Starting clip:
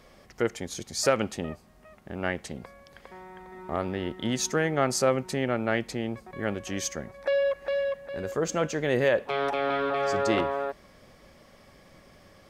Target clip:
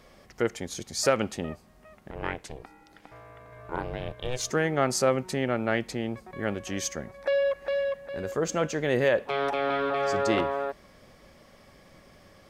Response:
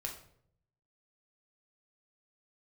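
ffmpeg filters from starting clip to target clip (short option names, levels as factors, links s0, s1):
-filter_complex "[0:a]asettb=1/sr,asplit=3[s0][s1][s2];[s0]atrim=end=2.114[s3];[s1]atrim=start=2.11:end=4.51,asetpts=PTS-STARTPTS,afade=t=in:d=0.004:c=qsin,afade=t=out:st=2.396:d=0.004:c=qsin,aeval=exprs='val(0)*sin(2*PI*250*n/s)':c=same[s4];[s2]atrim=start=4.506[s5];[s3][s4]acrossfade=d=0.004:c1=hsin:c2=qsin[s6];[s6][s5]acrossfade=d=0.004:c1=qsin:c2=hsin"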